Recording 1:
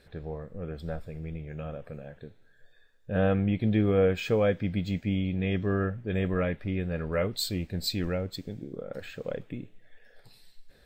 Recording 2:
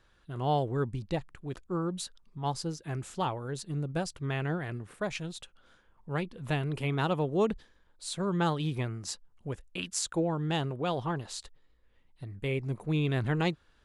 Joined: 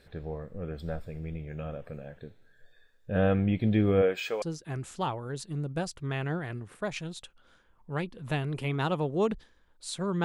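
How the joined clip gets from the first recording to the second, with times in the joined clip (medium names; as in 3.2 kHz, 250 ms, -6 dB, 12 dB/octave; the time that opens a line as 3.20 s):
recording 1
4.01–4.42 s: high-pass 270 Hz -> 730 Hz
4.42 s: go over to recording 2 from 2.61 s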